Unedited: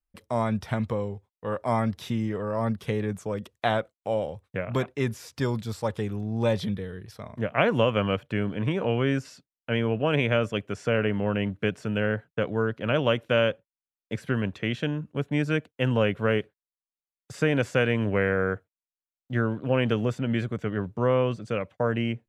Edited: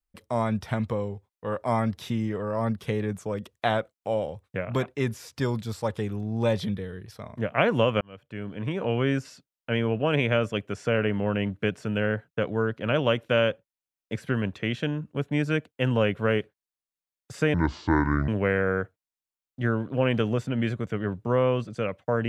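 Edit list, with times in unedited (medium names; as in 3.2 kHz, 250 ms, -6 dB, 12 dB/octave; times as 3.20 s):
8.01–9.00 s: fade in
17.54–18.00 s: speed 62%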